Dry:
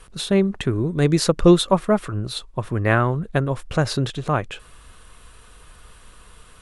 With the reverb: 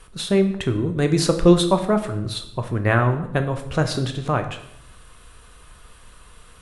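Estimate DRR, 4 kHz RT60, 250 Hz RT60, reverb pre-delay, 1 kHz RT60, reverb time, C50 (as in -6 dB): 7.0 dB, 0.60 s, 1.0 s, 13 ms, 0.70 s, 0.75 s, 10.5 dB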